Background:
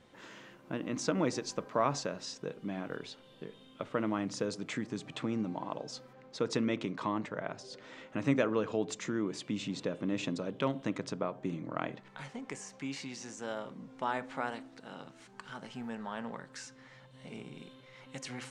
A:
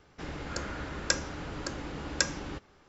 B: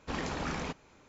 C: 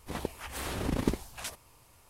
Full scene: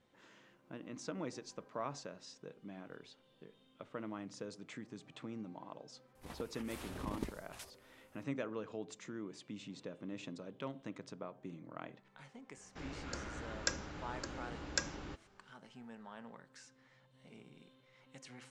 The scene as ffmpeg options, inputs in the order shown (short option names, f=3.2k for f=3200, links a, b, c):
-filter_complex "[0:a]volume=-11.5dB[a];[3:a]atrim=end=2.09,asetpts=PTS-STARTPTS,volume=-12.5dB,afade=t=in:d=0.004:c=hsin,afade=t=out:st=2.086:d=0.004:c=hsin,adelay=6150[b];[1:a]atrim=end=2.88,asetpts=PTS-STARTPTS,volume=-8dB,afade=t=in:d=0.004:c=hsin,afade=t=out:st=2.876:d=0.004:c=hsin,adelay=12570[c];[a][b][c]amix=inputs=3:normalize=0"